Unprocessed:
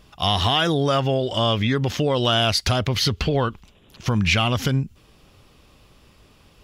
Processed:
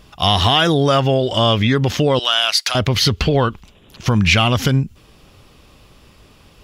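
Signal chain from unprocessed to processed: 2.19–2.75 s: high-pass 1.1 kHz 12 dB/octave; trim +5.5 dB

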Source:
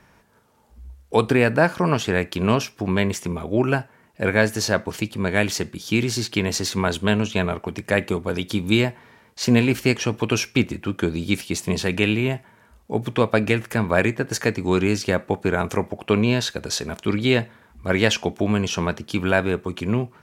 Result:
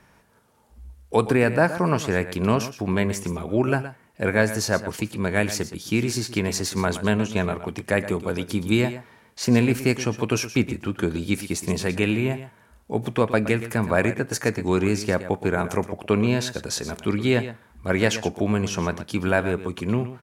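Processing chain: peaking EQ 10 kHz +4 dB 0.51 oct; delay 119 ms -13 dB; dynamic bell 3.3 kHz, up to -6 dB, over -40 dBFS, Q 1.8; trim -1.5 dB

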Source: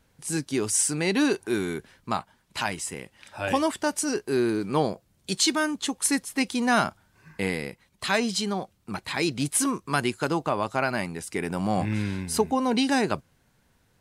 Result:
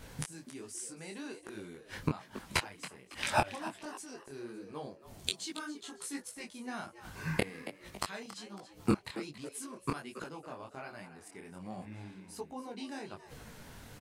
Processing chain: inverted gate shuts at -26 dBFS, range -34 dB; 5.56–6.53 s: doubling 17 ms -3 dB; on a send: frequency-shifting echo 277 ms, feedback 37%, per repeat +100 Hz, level -13.5 dB; on the sum: detune thickener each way 44 cents; trim +18 dB

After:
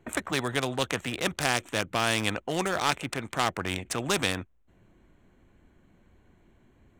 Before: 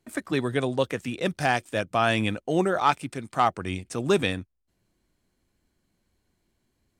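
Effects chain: local Wiener filter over 9 samples; spectrum-flattening compressor 2:1; trim +1 dB

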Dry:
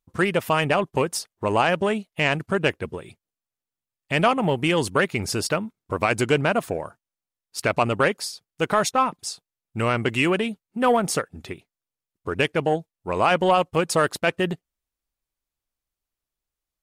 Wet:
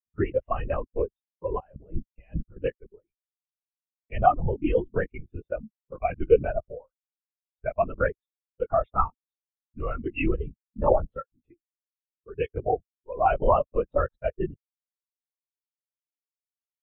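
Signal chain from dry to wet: 1.59–2.57 s: compressor with a negative ratio -26 dBFS, ratio -0.5; LPC vocoder at 8 kHz whisper; spectral contrast expander 2.5:1

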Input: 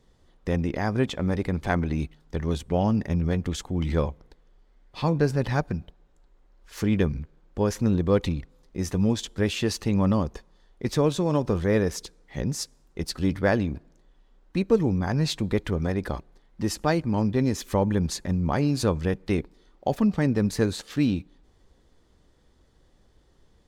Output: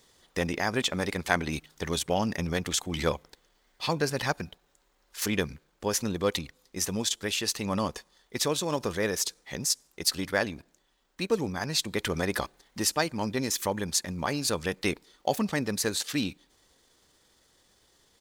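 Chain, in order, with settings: tilt EQ +3.5 dB/octave; gain riding within 4 dB 0.5 s; tempo 1.3×

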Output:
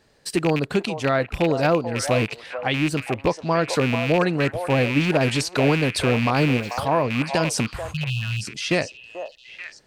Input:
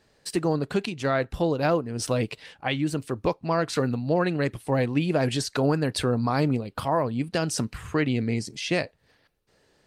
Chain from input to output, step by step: rattle on loud lows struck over -28 dBFS, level -19 dBFS; 7.91–8.43 s: brick-wall FIR band-stop 200–2500 Hz; on a send: repeats whose band climbs or falls 437 ms, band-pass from 720 Hz, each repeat 1.4 oct, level -5.5 dB; 6.43–6.83 s: on the sum: small samples zeroed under -45 dBFS; trim +3.5 dB; AAC 192 kbps 48 kHz

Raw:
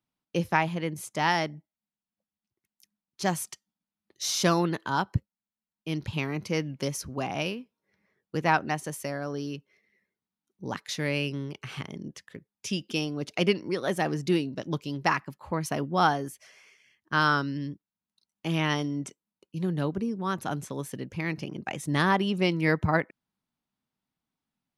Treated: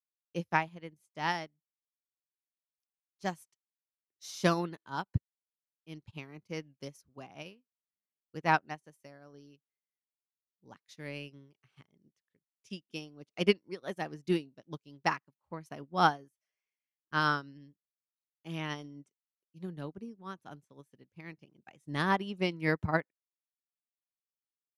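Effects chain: upward expansion 2.5:1, over -43 dBFS

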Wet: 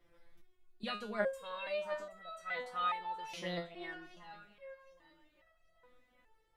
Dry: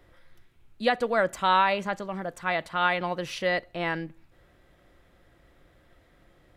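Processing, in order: on a send: echo whose repeats swap between lows and highs 386 ms, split 1.3 kHz, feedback 64%, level -12.5 dB; on the sum: resonator arpeggio 2.4 Hz 170–650 Hz; trim +2 dB

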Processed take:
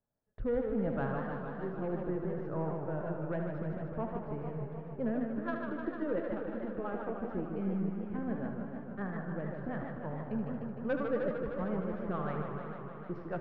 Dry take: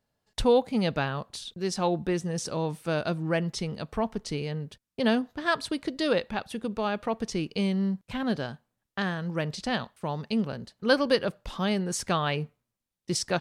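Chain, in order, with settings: partial rectifier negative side -3 dB; low-pass 1.5 kHz 24 dB/octave; saturation -18 dBFS, distortion -19 dB; rotary cabinet horn 0.7 Hz, later 7 Hz, at 2.91 s; thinning echo 76 ms, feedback 71%, high-pass 420 Hz, level -7.5 dB; on a send at -12 dB: reverberation RT60 1.8 s, pre-delay 22 ms; on the sum: modulated delay 152 ms, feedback 78%, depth 197 cents, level -6 dB; trim -5 dB

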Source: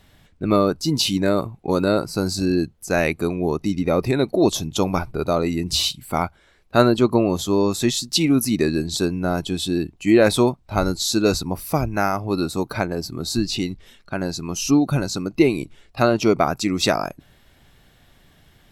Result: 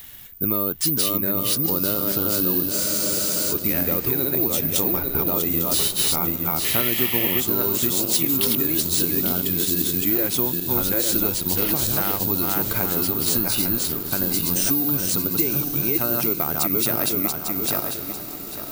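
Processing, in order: backward echo that repeats 424 ms, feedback 45%, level -3 dB; peaking EQ 660 Hz -4.5 dB 0.39 oct; in parallel at -2 dB: peak limiter -13.5 dBFS, peak gain reduction 11.5 dB; on the sum: compression, threshold -18 dBFS, peak gain reduction 11 dB; treble shelf 9.4 kHz +12 dB; on a send: echo that smears into a reverb 1069 ms, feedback 42%, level -12 dB; on the sum: painted sound noise, 6.64–7.41 s, 1.7–3.4 kHz -26 dBFS; careless resampling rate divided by 3×, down none, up zero stuff; spectral freeze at 2.73 s, 0.78 s; tape noise reduction on one side only encoder only; trim -5.5 dB

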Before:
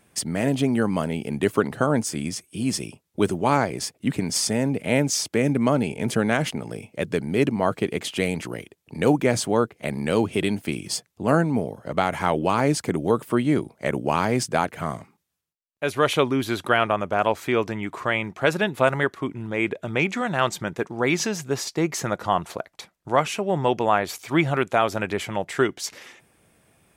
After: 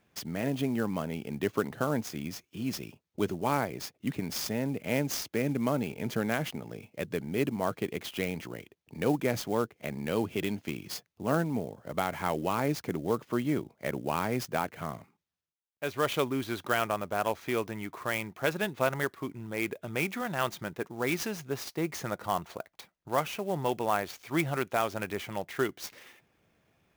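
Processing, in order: elliptic low-pass 6.7 kHz; sampling jitter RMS 0.024 ms; trim -7.5 dB

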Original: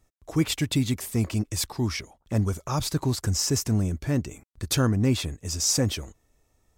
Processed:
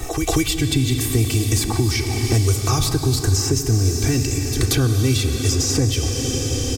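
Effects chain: bass shelf 88 Hz +7 dB; comb 2.6 ms, depth 98%; dynamic bell 1 kHz, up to -5 dB, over -37 dBFS, Q 0.75; in parallel at 0 dB: compression, threshold -29 dBFS, peak gain reduction 13.5 dB; on the sum: reverse echo 186 ms -22 dB; on a send at -5.5 dB: reverberation RT60 3.9 s, pre-delay 5 ms; on the sum: three bands compressed up and down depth 100%

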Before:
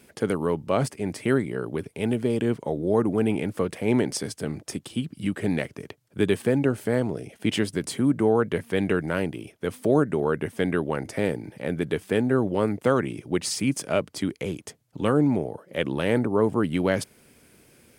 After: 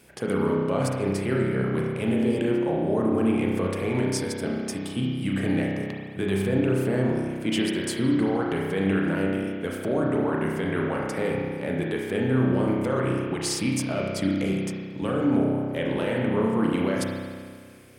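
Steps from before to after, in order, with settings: hum notches 50/100/150/200/250/300/350/400/450 Hz; peak limiter -18 dBFS, peak gain reduction 10 dB; spring tank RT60 1.8 s, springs 31 ms, chirp 45 ms, DRR -2.5 dB

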